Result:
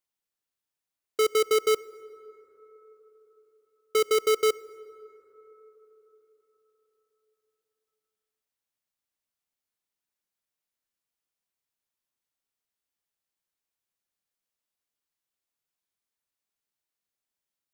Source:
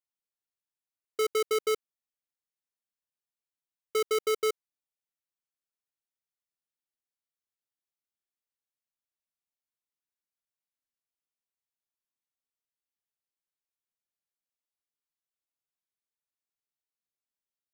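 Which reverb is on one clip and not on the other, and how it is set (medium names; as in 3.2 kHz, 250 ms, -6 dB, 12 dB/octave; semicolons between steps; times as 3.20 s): plate-style reverb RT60 4.4 s, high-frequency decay 0.3×, DRR 18.5 dB; trim +4.5 dB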